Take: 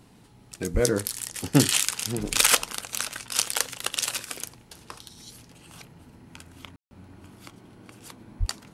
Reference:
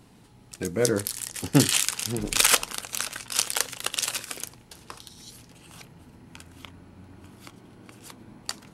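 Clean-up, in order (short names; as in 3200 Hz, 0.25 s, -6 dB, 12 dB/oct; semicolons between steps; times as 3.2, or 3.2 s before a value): de-plosive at 0.73/8.39; room tone fill 6.76–6.91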